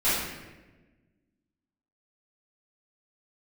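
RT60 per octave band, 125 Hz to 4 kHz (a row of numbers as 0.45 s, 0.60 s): 1.8 s, 1.8 s, 1.4 s, 1.0 s, 1.1 s, 0.80 s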